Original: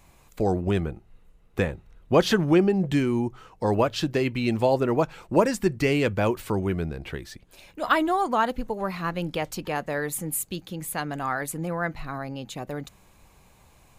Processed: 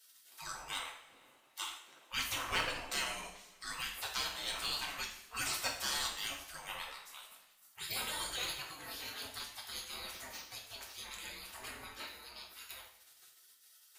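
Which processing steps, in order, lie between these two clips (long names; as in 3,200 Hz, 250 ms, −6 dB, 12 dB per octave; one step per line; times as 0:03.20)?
gate on every frequency bin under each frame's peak −30 dB weak
asymmetric clip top −35 dBFS
coupled-rooms reverb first 0.54 s, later 1.9 s, from −18 dB, DRR −1 dB
level +4 dB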